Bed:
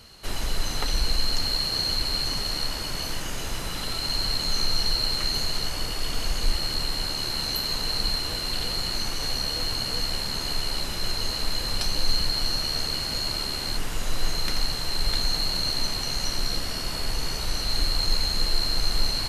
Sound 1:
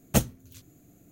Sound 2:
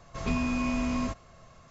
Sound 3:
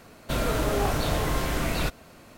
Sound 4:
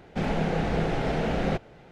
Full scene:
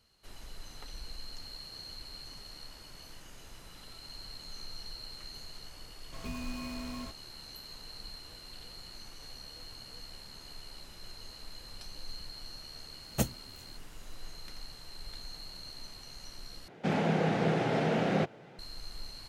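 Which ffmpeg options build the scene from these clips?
-filter_complex "[0:a]volume=-20dB[a];[2:a]acrusher=bits=5:mix=0:aa=0.5[b];[4:a]highpass=f=120:w=0.5412,highpass=f=120:w=1.3066[c];[a]asplit=2[d][e];[d]atrim=end=16.684[f];[c]atrim=end=1.91,asetpts=PTS-STARTPTS,volume=-1.5dB[g];[e]atrim=start=18.586[h];[b]atrim=end=1.7,asetpts=PTS-STARTPTS,volume=-12dB,afade=t=in:d=0.004:c=hsin,afade=t=out:st=1.696:d=0.004:c=hsin,adelay=5980[i];[1:a]atrim=end=1.11,asetpts=PTS-STARTPTS,volume=-7.5dB,afade=t=in:d=0.004:c=hsin,afade=t=out:st=1.106:d=0.004:c=hsin,adelay=13040[j];[f][g]acrossfade=d=0.004:c1=hsin:c2=hsin[k];[k][h]acrossfade=d=0.004:c1=hsin:c2=hsin[l];[l][i][j]amix=inputs=3:normalize=0"

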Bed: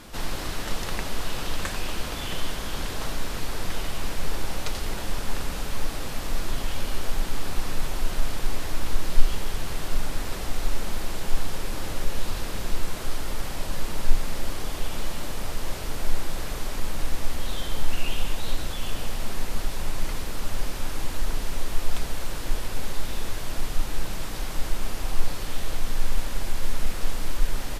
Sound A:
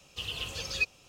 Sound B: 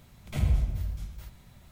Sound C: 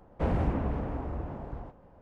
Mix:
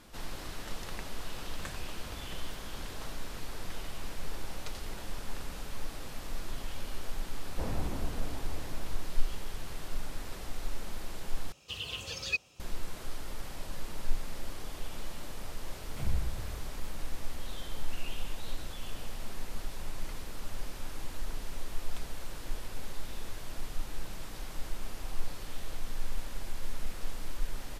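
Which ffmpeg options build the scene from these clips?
-filter_complex "[2:a]asplit=2[a][b];[0:a]volume=-10.5dB[c];[a]acompressor=threshold=-38dB:ratio=6:attack=3.2:release=140:knee=1:detection=peak[d];[1:a]highpass=46[e];[c]asplit=2[f][g];[f]atrim=end=11.524[h];[e]atrim=end=1.08,asetpts=PTS-STARTPTS,volume=-2.5dB[i];[g]atrim=start=12.596[j];[d]atrim=end=1.71,asetpts=PTS-STARTPTS,volume=-9dB,afade=t=in:d=0.004:c=hsin,afade=t=out:st=1.706:d=0.004:c=hsin,adelay=1310[k];[3:a]atrim=end=2.01,asetpts=PTS-STARTPTS,volume=-9dB,afade=t=in:d=0.004:c=hsin,afade=t=out:st=2.006:d=0.004:c=hsin,adelay=325458S[l];[b]atrim=end=1.71,asetpts=PTS-STARTPTS,volume=-9.5dB,afade=t=in:d=0.004:c=hsin,afade=t=out:st=1.706:d=0.004:c=hsin,adelay=15640[m];[h][i]acrossfade=d=0.004:c1=hsin:c2=hsin[n];[n][j]acrossfade=d=0.004:c1=hsin:c2=hsin[o];[o][k][l][m]amix=inputs=4:normalize=0"

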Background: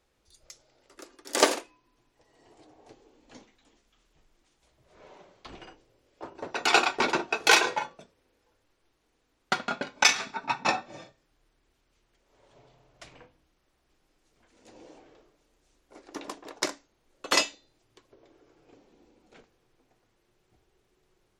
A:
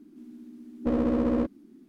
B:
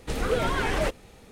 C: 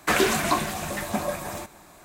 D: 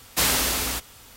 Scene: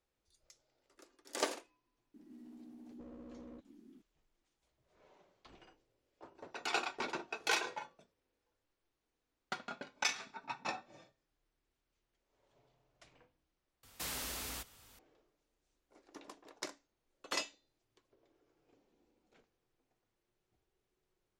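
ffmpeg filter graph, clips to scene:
-filter_complex "[0:a]volume=-14dB[a];[1:a]acompressor=threshold=-43dB:ratio=6:attack=3.2:release=140:knee=1:detection=peak[b];[4:a]acompressor=threshold=-28dB:ratio=2.5:attack=3.1:release=55:knee=1:detection=peak[c];[a]asplit=2[d][e];[d]atrim=end=13.834[f];[c]atrim=end=1.16,asetpts=PTS-STARTPTS,volume=-13.5dB[g];[e]atrim=start=14.986[h];[b]atrim=end=1.88,asetpts=PTS-STARTPTS,volume=-7dB,afade=t=in:d=0.004:c=hsin,afade=t=out:st=1.876:d=0.004:c=hsin,adelay=2140[i];[f][g]acrossfade=d=0.004:c1=hsin:c2=hsin[j];[j][h]acrossfade=d=0.004:c1=hsin:c2=hsin[k];[k][i]amix=inputs=2:normalize=0"

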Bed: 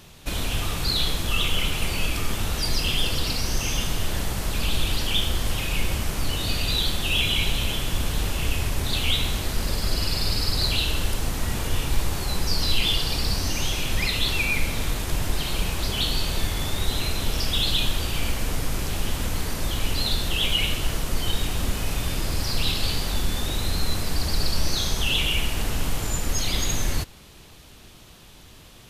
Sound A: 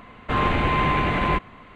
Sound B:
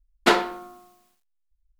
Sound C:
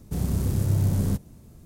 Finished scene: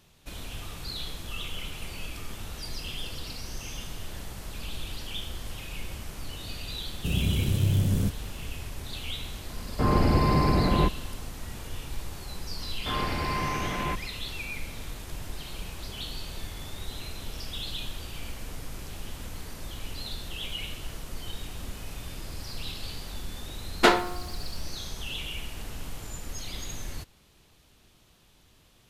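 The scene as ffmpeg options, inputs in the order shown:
-filter_complex "[1:a]asplit=2[a][b];[0:a]volume=-12.5dB[c];[3:a]equalizer=f=930:t=o:w=0.77:g=-6.5[d];[a]tiltshelf=f=1.2k:g=9.5[e];[d]atrim=end=1.65,asetpts=PTS-STARTPTS,volume=-1.5dB,afade=t=in:d=0.004:c=hsin,afade=t=out:st=1.646:d=0.004:c=hsin,adelay=6930[f];[e]atrim=end=1.75,asetpts=PTS-STARTPTS,volume=-7dB,afade=t=in:d=0.004:c=hsin,afade=t=out:st=1.746:d=0.004:c=hsin,adelay=9500[g];[b]atrim=end=1.75,asetpts=PTS-STARTPTS,volume=-9dB,afade=t=in:d=0.004:c=hsin,afade=t=out:st=1.746:d=0.004:c=hsin,adelay=12570[h];[2:a]atrim=end=1.79,asetpts=PTS-STARTPTS,volume=-1dB,afade=t=in:d=0.004:c=hsin,afade=t=out:st=1.786:d=0.004:c=hsin,adelay=23570[i];[c][f][g][h][i]amix=inputs=5:normalize=0"

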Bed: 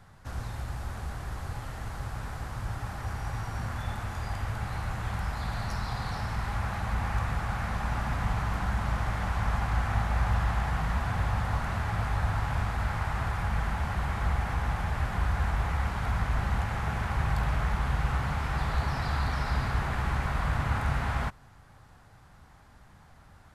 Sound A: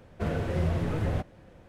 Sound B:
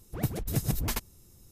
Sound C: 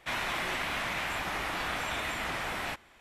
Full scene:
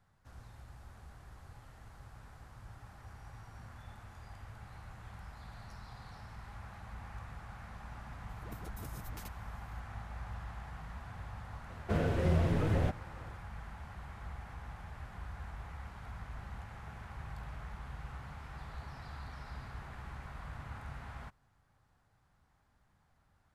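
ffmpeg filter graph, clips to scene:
-filter_complex "[0:a]volume=-17dB[a];[2:a]acompressor=threshold=-29dB:ratio=6:attack=3.2:release=140:knee=1:detection=peak,atrim=end=1.51,asetpts=PTS-STARTPTS,volume=-13.5dB,afade=t=in:d=0.004:c=hsin,afade=t=out:st=1.506:d=0.004:c=hsin,adelay=8290[b];[1:a]atrim=end=1.68,asetpts=PTS-STARTPTS,volume=-1.5dB,afade=t=in:d=0.004:c=hsin,afade=t=out:st=1.676:d=0.004:c=hsin,adelay=11690[c];[a][b][c]amix=inputs=3:normalize=0"

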